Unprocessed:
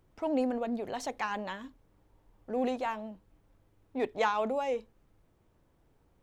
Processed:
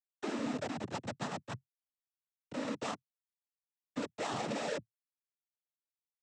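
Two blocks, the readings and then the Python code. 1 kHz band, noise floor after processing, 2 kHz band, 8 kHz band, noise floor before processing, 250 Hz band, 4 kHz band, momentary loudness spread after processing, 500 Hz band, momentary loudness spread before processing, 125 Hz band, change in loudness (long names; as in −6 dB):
−8.0 dB, below −85 dBFS, −5.0 dB, +2.5 dB, −69 dBFS, −5.0 dB, +0.5 dB, 9 LU, −8.5 dB, 12 LU, +7.0 dB, −6.5 dB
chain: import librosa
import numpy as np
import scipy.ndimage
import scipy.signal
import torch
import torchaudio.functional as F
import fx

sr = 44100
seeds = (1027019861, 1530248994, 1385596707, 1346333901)

y = fx.schmitt(x, sr, flips_db=-33.0)
y = fx.noise_vocoder(y, sr, seeds[0], bands=12)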